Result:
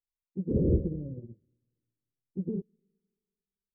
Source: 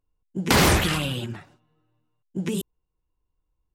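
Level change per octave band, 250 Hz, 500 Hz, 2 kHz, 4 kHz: -5.5 dB, -6.5 dB, under -40 dB, under -40 dB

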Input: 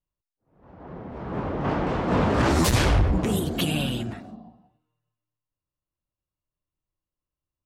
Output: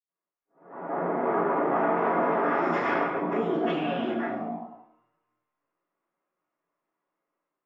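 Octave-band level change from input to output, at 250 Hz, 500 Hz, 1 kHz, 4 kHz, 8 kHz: -3.5 dB, +2.5 dB, +3.5 dB, -13.5 dB, under -30 dB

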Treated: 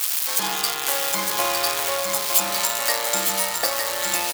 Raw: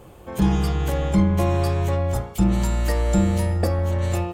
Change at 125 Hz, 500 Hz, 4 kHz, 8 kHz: -27.0 dB, -2.5 dB, +14.5 dB, +16.0 dB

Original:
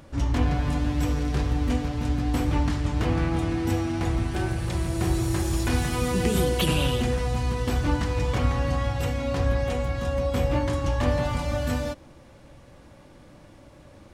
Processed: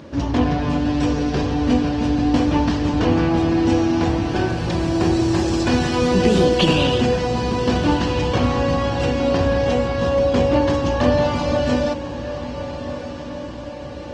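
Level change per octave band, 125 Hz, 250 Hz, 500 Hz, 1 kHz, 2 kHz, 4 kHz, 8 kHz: +2.5 dB, +10.0 dB, +10.0 dB, +8.5 dB, +6.5 dB, +8.0 dB, +1.5 dB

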